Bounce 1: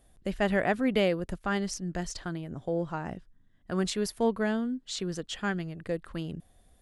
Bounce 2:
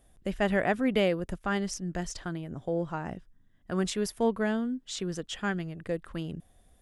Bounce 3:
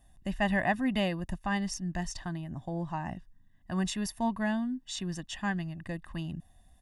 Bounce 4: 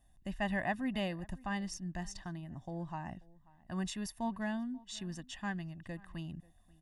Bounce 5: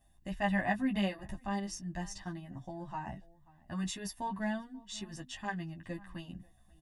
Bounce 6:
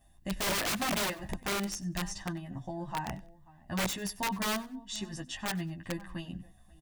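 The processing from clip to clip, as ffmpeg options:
ffmpeg -i in.wav -af "equalizer=frequency=4300:width=7.6:gain=-6" out.wav
ffmpeg -i in.wav -af "aecho=1:1:1.1:0.9,volume=-3.5dB" out.wav
ffmpeg -i in.wav -filter_complex "[0:a]asplit=2[link_01][link_02];[link_02]adelay=536.4,volume=-23dB,highshelf=frequency=4000:gain=-12.1[link_03];[link_01][link_03]amix=inputs=2:normalize=0,volume=-6.5dB" out.wav
ffmpeg -i in.wav -filter_complex "[0:a]asplit=2[link_01][link_02];[link_02]adelay=15,volume=-8.5dB[link_03];[link_01][link_03]amix=inputs=2:normalize=0,asplit=2[link_04][link_05];[link_05]adelay=9.7,afreqshift=0.55[link_06];[link_04][link_06]amix=inputs=2:normalize=1,volume=4.5dB" out.wav
ffmpeg -i in.wav -af "aeval=exprs='(mod(33.5*val(0)+1,2)-1)/33.5':channel_layout=same,aecho=1:1:95|190:0.0891|0.0214,volume=4.5dB" out.wav

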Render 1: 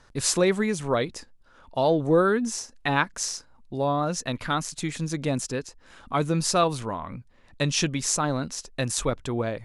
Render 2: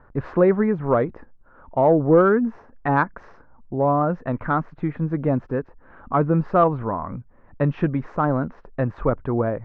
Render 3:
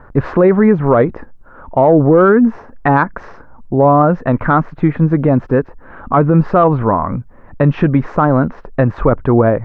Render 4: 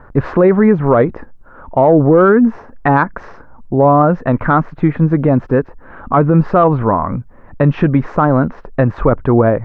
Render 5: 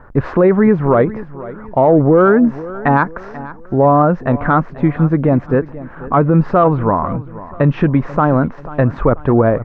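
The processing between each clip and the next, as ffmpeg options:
ffmpeg -i in.wav -af "lowpass=frequency=1500:width=0.5412,lowpass=frequency=1500:width=1.3066,acontrast=41" out.wav
ffmpeg -i in.wav -af "alimiter=level_in=13dB:limit=-1dB:release=50:level=0:latency=1,volume=-1dB" out.wav
ffmpeg -i in.wav -af anull out.wav
ffmpeg -i in.wav -af "aecho=1:1:488|976|1464:0.141|0.0565|0.0226,volume=-1dB" out.wav

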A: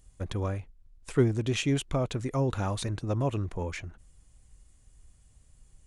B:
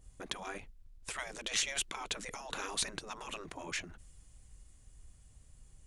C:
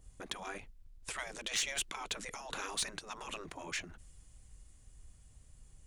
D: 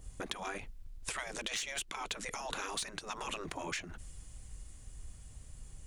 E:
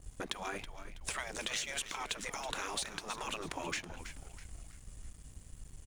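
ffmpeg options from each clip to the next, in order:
ffmpeg -i in.wav -af "afftfilt=real='re*lt(hypot(re,im),0.0631)':imag='im*lt(hypot(re,im),0.0631)':win_size=1024:overlap=0.75,adynamicequalizer=threshold=0.002:dfrequency=1600:dqfactor=0.7:tfrequency=1600:tqfactor=0.7:attack=5:release=100:ratio=0.375:range=2.5:mode=boostabove:tftype=highshelf" out.wav
ffmpeg -i in.wav -filter_complex "[0:a]acrossover=split=730[link_01][link_02];[link_01]alimiter=level_in=15dB:limit=-24dB:level=0:latency=1:release=236,volume=-15dB[link_03];[link_03][link_02]amix=inputs=2:normalize=0,asoftclip=type=tanh:threshold=-24dB" out.wav
ffmpeg -i in.wav -af "acompressor=threshold=-44dB:ratio=6,volume=8dB" out.wav
ffmpeg -i in.wav -filter_complex "[0:a]asplit=2[link_01][link_02];[link_02]asplit=4[link_03][link_04][link_05][link_06];[link_03]adelay=325,afreqshift=-87,volume=-11dB[link_07];[link_04]adelay=650,afreqshift=-174,volume=-18.5dB[link_08];[link_05]adelay=975,afreqshift=-261,volume=-26.1dB[link_09];[link_06]adelay=1300,afreqshift=-348,volume=-33.6dB[link_10];[link_07][link_08][link_09][link_10]amix=inputs=4:normalize=0[link_11];[link_01][link_11]amix=inputs=2:normalize=0,aeval=exprs='sgn(val(0))*max(abs(val(0))-0.00141,0)':channel_layout=same,volume=1dB" out.wav

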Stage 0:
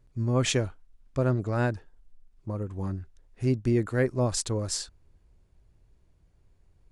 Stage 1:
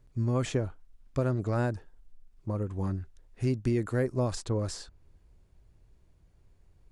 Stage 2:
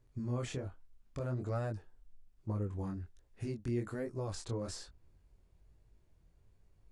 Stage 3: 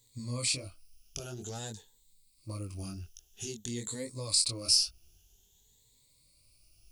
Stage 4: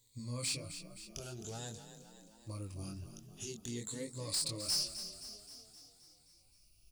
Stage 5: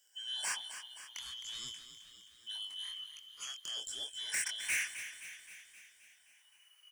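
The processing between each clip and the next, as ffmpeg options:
ffmpeg -i in.wav -filter_complex "[0:a]acrossover=split=1400|5100[link_01][link_02][link_03];[link_01]acompressor=threshold=-25dB:ratio=4[link_04];[link_02]acompressor=threshold=-47dB:ratio=4[link_05];[link_03]acompressor=threshold=-48dB:ratio=4[link_06];[link_04][link_05][link_06]amix=inputs=3:normalize=0,volume=1dB" out.wav
ffmpeg -i in.wav -af "alimiter=limit=-23.5dB:level=0:latency=1:release=204,flanger=delay=18:depth=7.1:speed=1.2,volume=-2dB" out.wav
ffmpeg -i in.wav -af "afftfilt=real='re*pow(10,14/40*sin(2*PI*(1*log(max(b,1)*sr/1024/100)/log(2)-(0.51)*(pts-256)/sr)))':imag='im*pow(10,14/40*sin(2*PI*(1*log(max(b,1)*sr/1024/100)/log(2)-(0.51)*(pts-256)/sr)))':win_size=1024:overlap=0.75,aexciter=amount=8.6:drive=8.2:freq=2600,volume=-5dB" out.wav
ffmpeg -i in.wav -filter_complex "[0:a]asoftclip=type=tanh:threshold=-25dB,asplit=2[link_01][link_02];[link_02]asplit=7[link_03][link_04][link_05][link_06][link_07][link_08][link_09];[link_03]adelay=262,afreqshift=32,volume=-11dB[link_10];[link_04]adelay=524,afreqshift=64,volume=-15.6dB[link_11];[link_05]adelay=786,afreqshift=96,volume=-20.2dB[link_12];[link_06]adelay=1048,afreqshift=128,volume=-24.7dB[link_13];[link_07]adelay=1310,afreqshift=160,volume=-29.3dB[link_14];[link_08]adelay=1572,afreqshift=192,volume=-33.9dB[link_15];[link_09]adelay=1834,afreqshift=224,volume=-38.5dB[link_16];[link_10][link_11][link_12][link_13][link_14][link_15][link_16]amix=inputs=7:normalize=0[link_17];[link_01][link_17]amix=inputs=2:normalize=0,volume=-4dB" out.wav
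ffmpeg -i in.wav -af "afftfilt=real='real(if(lt(b,272),68*(eq(floor(b/68),0)*1+eq(floor(b/68),1)*3+eq(floor(b/68),2)*0+eq(floor(b/68),3)*2)+mod(b,68),b),0)':imag='imag(if(lt(b,272),68*(eq(floor(b/68),0)*1+eq(floor(b/68),1)*3+eq(floor(b/68),2)*0+eq(floor(b/68),3)*2)+mod(b,68),b),0)':win_size=2048:overlap=0.75" out.wav

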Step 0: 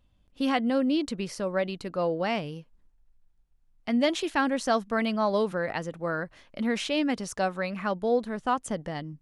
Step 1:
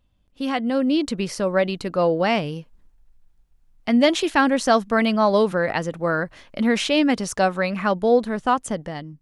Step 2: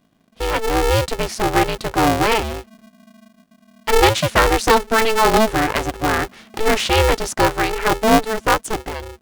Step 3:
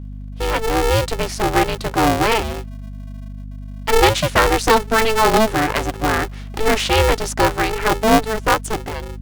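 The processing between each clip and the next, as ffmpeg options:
ffmpeg -i in.wav -af "dynaudnorm=framelen=240:gausssize=7:maxgain=8dB" out.wav
ffmpeg -i in.wav -af "aeval=exprs='val(0)*sgn(sin(2*PI*220*n/s))':channel_layout=same,volume=3.5dB" out.wav
ffmpeg -i in.wav -af "aeval=exprs='val(0)+0.0316*(sin(2*PI*50*n/s)+sin(2*PI*2*50*n/s)/2+sin(2*PI*3*50*n/s)/3+sin(2*PI*4*50*n/s)/4+sin(2*PI*5*50*n/s)/5)':channel_layout=same" out.wav

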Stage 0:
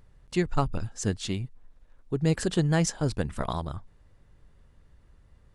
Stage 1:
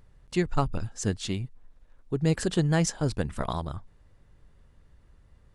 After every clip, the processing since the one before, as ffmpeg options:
ffmpeg -i in.wav -af anull out.wav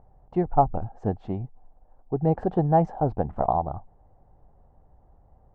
ffmpeg -i in.wav -af "lowpass=frequency=770:width_type=q:width=7.2" out.wav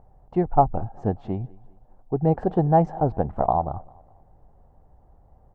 ffmpeg -i in.wav -af "aecho=1:1:200|400|600:0.0631|0.0252|0.0101,volume=2dB" out.wav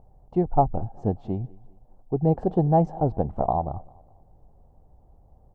ffmpeg -i in.wav -af "equalizer=frequency=1700:width=1:gain=-11" out.wav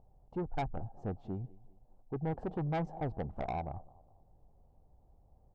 ffmpeg -i in.wav -af "asoftclip=type=tanh:threshold=-21dB,volume=-9dB" out.wav

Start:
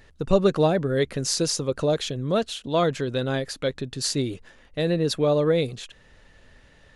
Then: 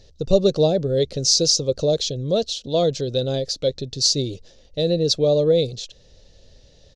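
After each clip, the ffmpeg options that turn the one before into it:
ffmpeg -i in.wav -af "firequalizer=gain_entry='entry(100,0);entry(250,-6);entry(530,2);entry(1000,-16);entry(1700,-18);entry(4000,5);entry(5800,7);entry(9300,-14)':delay=0.05:min_phase=1,volume=4dB" out.wav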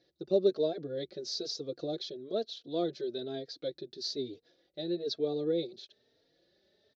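ffmpeg -i in.wav -filter_complex "[0:a]highpass=290,equalizer=frequency=350:width_type=q:width=4:gain=8,equalizer=frequency=520:width_type=q:width=4:gain=-7,equalizer=frequency=970:width_type=q:width=4:gain=-7,equalizer=frequency=1600:width_type=q:width=4:gain=4,equalizer=frequency=2800:width_type=q:width=4:gain=-10,lowpass=frequency=4100:width=0.5412,lowpass=frequency=4100:width=1.3066,asplit=2[link_01][link_02];[link_02]adelay=3.7,afreqshift=1.1[link_03];[link_01][link_03]amix=inputs=2:normalize=1,volume=-8dB" out.wav

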